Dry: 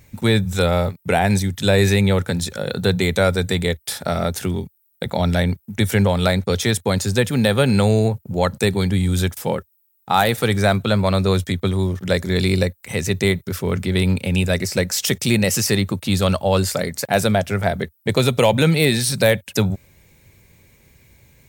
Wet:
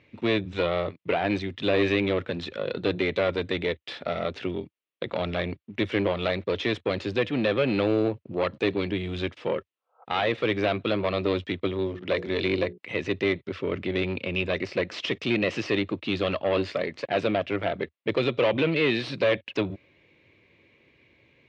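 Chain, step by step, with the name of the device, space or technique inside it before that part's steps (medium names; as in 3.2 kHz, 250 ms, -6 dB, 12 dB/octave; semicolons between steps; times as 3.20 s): 9.75–10.01 s: spectral replace 450–1600 Hz both; 11.77–12.78 s: hum notches 60/120/180/240/300/360/420/480 Hz; guitar amplifier (valve stage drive 15 dB, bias 0.5; tone controls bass -10 dB, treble -3 dB; cabinet simulation 95–3600 Hz, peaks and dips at 180 Hz -3 dB, 310 Hz +7 dB, 830 Hz -8 dB, 1.5 kHz -6 dB, 2.7 kHz +4 dB)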